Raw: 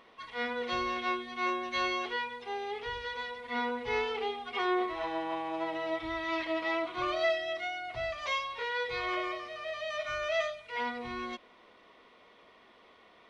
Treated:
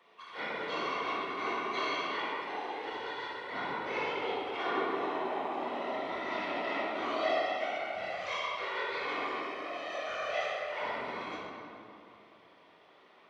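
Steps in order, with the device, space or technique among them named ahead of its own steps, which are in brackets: whispering ghost (whisperiser; HPF 290 Hz 6 dB/oct; reverb RT60 2.7 s, pre-delay 20 ms, DRR -4.5 dB); gain -6.5 dB

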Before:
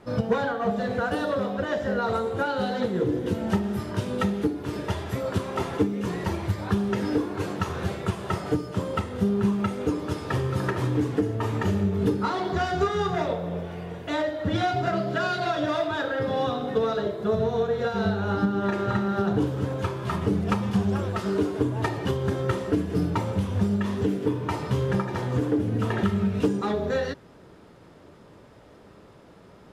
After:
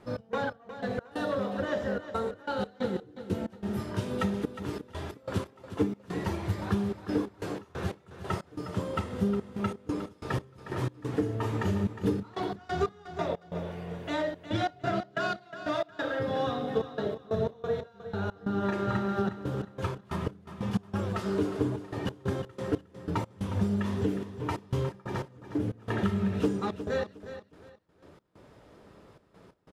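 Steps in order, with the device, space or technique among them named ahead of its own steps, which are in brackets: trance gate with a delay (step gate "x.x..x.xxxxx.x." 91 bpm -24 dB; feedback echo 0.36 s, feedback 26%, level -12 dB); gain -4 dB

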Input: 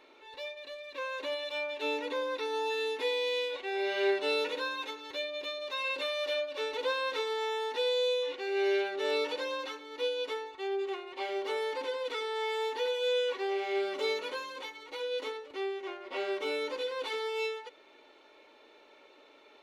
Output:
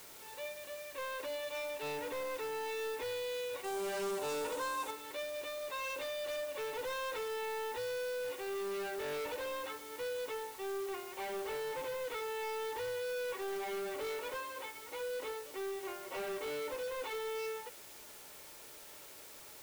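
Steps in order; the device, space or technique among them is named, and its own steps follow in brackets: aircraft radio (BPF 320–2400 Hz; hard clip -36 dBFS, distortion -8 dB; white noise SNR 13 dB); 3.64–4.91 graphic EQ 250/1000/2000/8000 Hz +4/+6/-5/+7 dB; gain -1 dB

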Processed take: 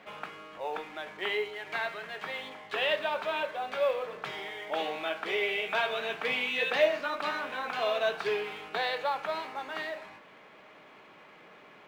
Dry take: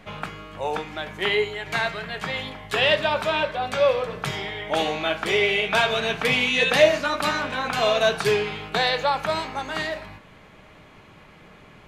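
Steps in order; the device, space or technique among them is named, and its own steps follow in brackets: phone line with mismatched companding (BPF 330–3500 Hz; G.711 law mismatch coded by mu); gain -8.5 dB

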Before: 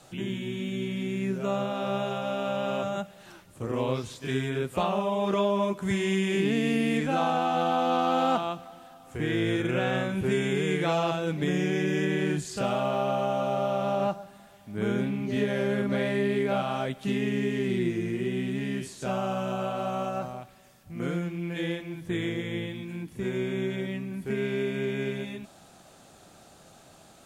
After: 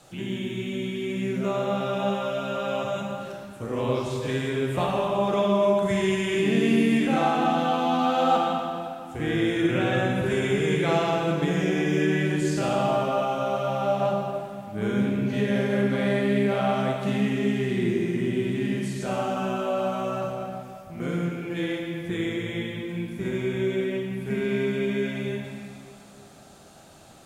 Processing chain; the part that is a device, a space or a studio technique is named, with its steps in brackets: stairwell (reverb RT60 2.3 s, pre-delay 35 ms, DRR 0.5 dB)

